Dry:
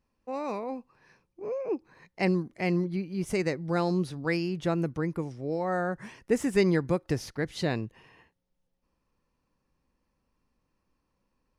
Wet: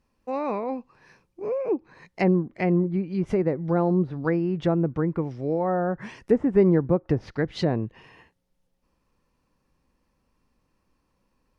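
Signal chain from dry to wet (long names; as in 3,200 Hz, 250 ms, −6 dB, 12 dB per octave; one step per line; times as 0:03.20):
treble cut that deepens with the level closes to 930 Hz, closed at −24.5 dBFS
level +5.5 dB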